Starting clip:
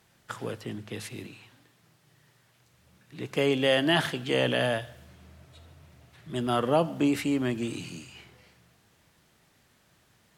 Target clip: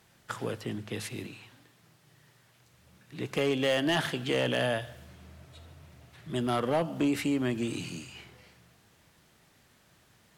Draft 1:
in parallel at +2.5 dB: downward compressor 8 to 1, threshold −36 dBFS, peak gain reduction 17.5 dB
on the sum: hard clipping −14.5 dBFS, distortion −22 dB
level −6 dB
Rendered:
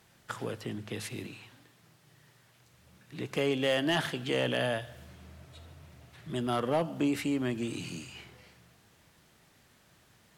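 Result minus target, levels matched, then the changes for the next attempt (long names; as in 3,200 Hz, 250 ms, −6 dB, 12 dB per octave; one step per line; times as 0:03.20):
downward compressor: peak gain reduction +6 dB
change: downward compressor 8 to 1, threshold −29 dBFS, peak gain reduction 11.5 dB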